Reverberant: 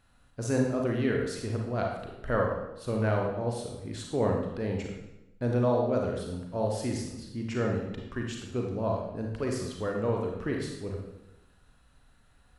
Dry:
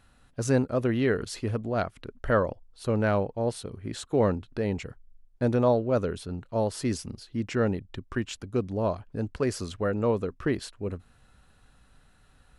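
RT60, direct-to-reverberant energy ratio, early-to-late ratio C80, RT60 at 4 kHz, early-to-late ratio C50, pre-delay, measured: 0.95 s, 0.0 dB, 5.5 dB, 0.80 s, 2.5 dB, 32 ms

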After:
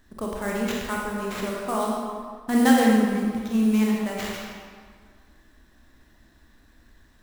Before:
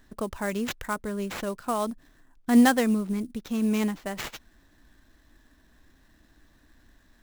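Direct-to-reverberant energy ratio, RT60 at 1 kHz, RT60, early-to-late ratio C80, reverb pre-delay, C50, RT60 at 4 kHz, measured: -3.0 dB, 1.8 s, 1.8 s, 1.0 dB, 24 ms, -1.0 dB, 1.3 s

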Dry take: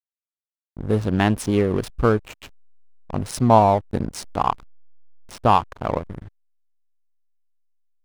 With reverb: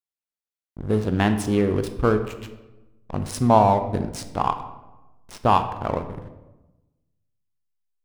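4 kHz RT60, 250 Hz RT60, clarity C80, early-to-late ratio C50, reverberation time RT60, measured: 0.65 s, 1.3 s, 12.5 dB, 10.5 dB, 1.1 s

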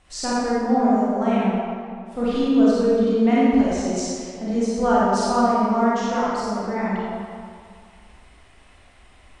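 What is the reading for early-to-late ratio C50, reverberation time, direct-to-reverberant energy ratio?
-5.0 dB, 2.1 s, -8.5 dB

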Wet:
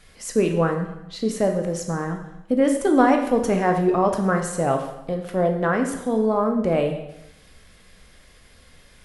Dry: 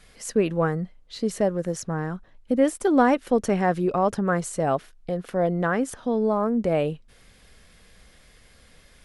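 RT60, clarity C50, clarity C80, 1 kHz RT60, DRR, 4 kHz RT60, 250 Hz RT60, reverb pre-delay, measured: 0.90 s, 7.0 dB, 9.5 dB, 0.90 s, 3.5 dB, 0.85 s, 0.90 s, 7 ms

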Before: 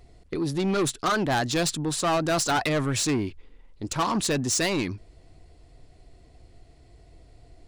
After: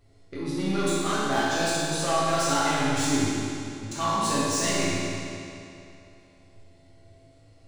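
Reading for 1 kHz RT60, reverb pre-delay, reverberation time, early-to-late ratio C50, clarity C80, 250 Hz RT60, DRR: 2.7 s, 4 ms, 2.7 s, -4.5 dB, -2.0 dB, 2.7 s, -10.0 dB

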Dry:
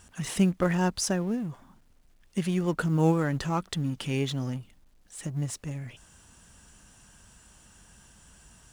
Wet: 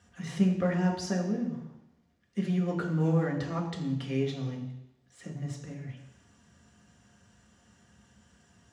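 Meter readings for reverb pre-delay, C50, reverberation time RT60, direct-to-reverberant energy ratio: 3 ms, 7.0 dB, 0.85 s, -1.0 dB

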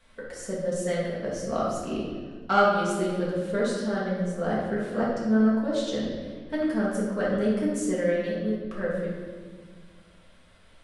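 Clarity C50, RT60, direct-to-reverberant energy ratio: -0.5 dB, 1.6 s, -7.0 dB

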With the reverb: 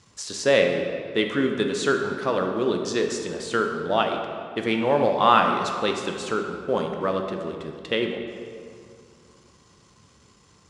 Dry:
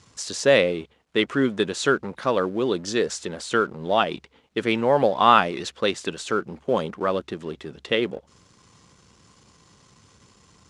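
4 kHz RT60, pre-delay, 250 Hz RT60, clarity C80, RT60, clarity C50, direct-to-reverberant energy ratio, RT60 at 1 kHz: 1.4 s, 16 ms, 2.7 s, 6.0 dB, 2.4 s, 5.0 dB, 3.5 dB, 2.3 s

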